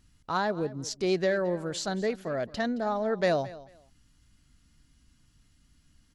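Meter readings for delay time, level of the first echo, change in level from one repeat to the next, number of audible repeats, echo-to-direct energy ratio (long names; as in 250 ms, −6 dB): 220 ms, −18.5 dB, −14.0 dB, 2, −18.5 dB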